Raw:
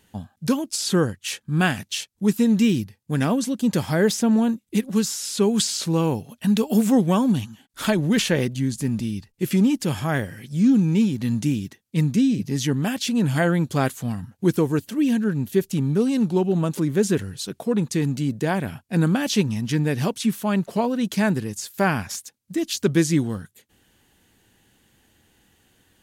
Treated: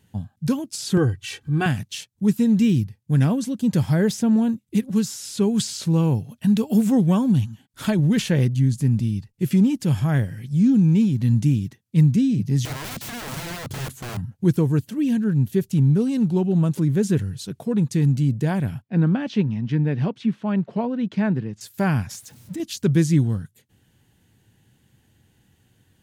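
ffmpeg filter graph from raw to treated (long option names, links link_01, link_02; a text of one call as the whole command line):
ffmpeg -i in.wav -filter_complex "[0:a]asettb=1/sr,asplit=3[link_01][link_02][link_03];[link_01]atrim=end=0.974[link_04];[link_02]atrim=start=0.97:end=1.66,asetpts=PTS-STARTPTS,afade=type=in:duration=0.004:curve=qsin,afade=type=out:start_time=0.686:duration=0.004:curve=qsin,highshelf=frequency=5700:gain=-9,acompressor=mode=upward:threshold=-25dB:ratio=2.5:attack=3.2:release=140:knee=2.83:detection=peak,aecho=1:1:2.6:0.84,atrim=end_sample=30429[link_05];[link_03]atrim=start=1.656[link_06];[link_04][link_05]acrossfade=duration=0.004:curve1=hsin:curve2=qsin[link_07];[link_07][link_06]acrossfade=duration=0.004:curve1=qsin:curve2=hsin,asettb=1/sr,asplit=3[link_08][link_09][link_10];[link_08]atrim=end=12.654[link_11];[link_09]atrim=start=12.65:end=14.17,asetpts=PTS-STARTPTS,afade=type=in:duration=0.004:curve=qsin,afade=type=out:start_time=1.516:duration=0.004:curve=qsin,acompressor=threshold=-21dB:ratio=8:attack=3.2:release=140:knee=1:detection=peak,lowshelf=frequency=280:gain=8.5,aeval=exprs='(mod(16.8*val(0)+1,2)-1)/16.8':channel_layout=same[link_12];[link_10]atrim=start=14.166[link_13];[link_11][link_12]acrossfade=duration=0.004:curve1=hsin:curve2=qsin[link_14];[link_14][link_13]acrossfade=duration=0.004:curve1=qsin:curve2=hsin,asettb=1/sr,asplit=3[link_15][link_16][link_17];[link_15]atrim=end=18.824[link_18];[link_16]atrim=start=18.82:end=21.61,asetpts=PTS-STARTPTS,afade=type=in:duration=0.004:curve=qsin,afade=type=out:start_time=2.786:duration=0.004:curve=qsin,highpass=170,lowpass=3500,aemphasis=mode=reproduction:type=cd[link_19];[link_17]atrim=start=21.606[link_20];[link_18][link_19]acrossfade=duration=0.004:curve1=hsin:curve2=qsin[link_21];[link_21][link_20]acrossfade=duration=0.004:curve1=qsin:curve2=hsin,asettb=1/sr,asplit=3[link_22][link_23][link_24];[link_22]atrim=end=22.134[link_25];[link_23]atrim=start=22.13:end=22.6,asetpts=PTS-STARTPTS,afade=type=in:duration=0.004:curve=qsin,afade=type=out:start_time=0.466:duration=0.004:curve=qsin,aeval=exprs='val(0)+0.5*0.00794*sgn(val(0))':channel_layout=same,acompressor=threshold=-29dB:ratio=2:attack=3.2:release=140:knee=1:detection=peak[link_26];[link_24]atrim=start=22.596[link_27];[link_25][link_26]acrossfade=duration=0.004:curve1=hsin:curve2=qsin[link_28];[link_28][link_27]acrossfade=duration=0.004:curve1=qsin:curve2=hsin,equalizer=frequency=120:width=0.98:gain=14,bandreject=frequency=1200:width=25,volume=-5dB" out.wav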